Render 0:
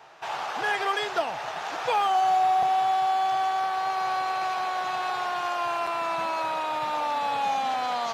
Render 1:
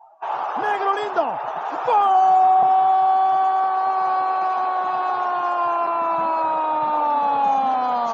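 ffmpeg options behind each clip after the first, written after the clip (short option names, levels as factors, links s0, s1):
-af "highpass=f=100:p=1,afftdn=nr=26:nf=-43,equalizer=f=250:t=o:w=1:g=7,equalizer=f=1000:t=o:w=1:g=6,equalizer=f=2000:t=o:w=1:g=-7,equalizer=f=4000:t=o:w=1:g=-9,volume=1.58"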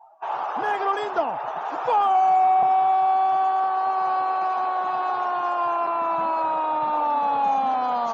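-af "acontrast=43,volume=0.398"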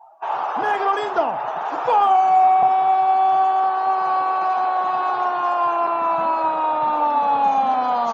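-filter_complex "[0:a]asplit=2[s0][s1];[s1]adelay=47,volume=0.251[s2];[s0][s2]amix=inputs=2:normalize=0,volume=1.5"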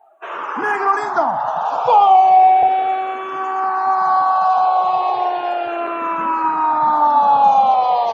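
-filter_complex "[0:a]asplit=2[s0][s1];[s1]afreqshift=-0.35[s2];[s0][s2]amix=inputs=2:normalize=1,volume=2"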